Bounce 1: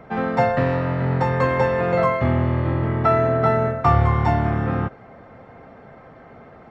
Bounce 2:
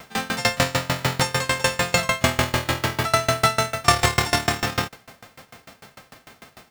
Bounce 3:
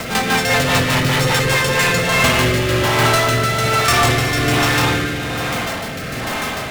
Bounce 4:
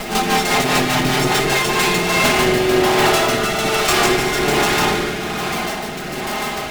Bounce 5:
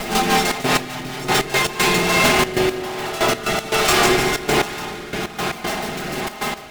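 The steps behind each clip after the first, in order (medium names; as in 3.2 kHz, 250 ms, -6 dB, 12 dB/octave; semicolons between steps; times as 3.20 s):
formants flattened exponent 0.3; sawtooth tremolo in dB decaying 6.7 Hz, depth 25 dB; trim +4.5 dB
spring tank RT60 1.7 s, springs 43/51 ms, chirp 55 ms, DRR -3.5 dB; power-law waveshaper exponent 0.35; rotary cabinet horn 5 Hz, later 1.2 Hz, at 1.36 s; trim -5 dB
comb filter that takes the minimum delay 4.8 ms; small resonant body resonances 350/750 Hz, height 11 dB, ringing for 55 ms
trance gate "xxxx.x....x.x.x" 117 bpm -12 dB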